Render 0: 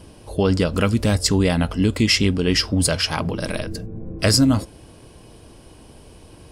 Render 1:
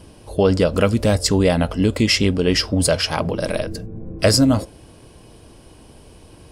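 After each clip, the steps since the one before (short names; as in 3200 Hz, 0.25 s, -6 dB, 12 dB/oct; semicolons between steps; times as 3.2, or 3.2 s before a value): dynamic EQ 570 Hz, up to +7 dB, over -36 dBFS, Q 1.6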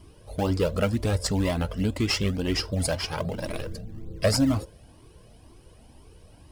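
in parallel at -11 dB: decimation with a swept rate 20×, swing 100% 3.6 Hz; on the sum: cascading flanger rising 2 Hz; gain -5 dB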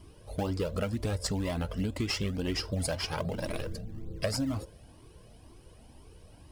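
compressor 10:1, threshold -25 dBFS, peak gain reduction 9 dB; gain -2 dB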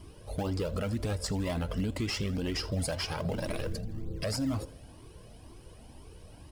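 limiter -26.5 dBFS, peak gain reduction 9 dB; feedback echo 82 ms, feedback 51%, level -22 dB; gain +3 dB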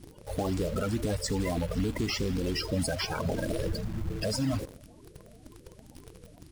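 bin magnitudes rounded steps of 30 dB; in parallel at -4 dB: bit-crush 7-bit; on the sum: gain -1.5 dB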